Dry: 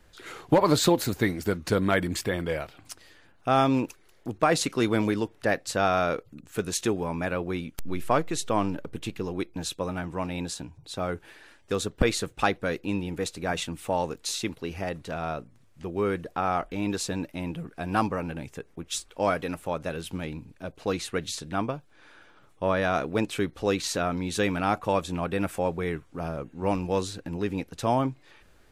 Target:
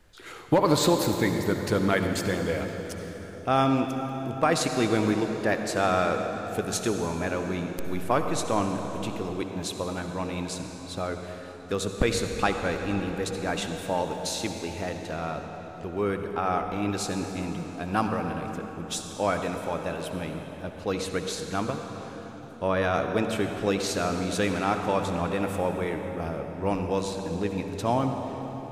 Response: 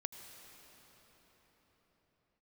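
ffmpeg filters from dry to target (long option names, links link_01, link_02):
-filter_complex "[0:a]asettb=1/sr,asplit=3[link_01][link_02][link_03];[link_01]atrim=end=21.394[link_04];[link_02]atrim=start=21.39:end=22.68,asetpts=PTS-STARTPTS,afade=type=in:duration=0.004:curve=qsin,afade=type=out:start_time=1.286:duration=0.004:curve=qsin,highshelf=frequency=5900:gain=8[link_05];[link_03]atrim=start=22.676[link_06];[link_04][link_05]acrossfade=duration=0.004:curve1=hsin:curve2=qsin[link_07];[link_07][link_06]acrossfade=duration=0.004:curve1=qsin:curve2=hsin[link_08];[1:a]atrim=start_sample=2205,asetrate=57330,aresample=44100[link_09];[link_08][link_09]afir=irnorm=-1:irlink=0,volume=4.5dB"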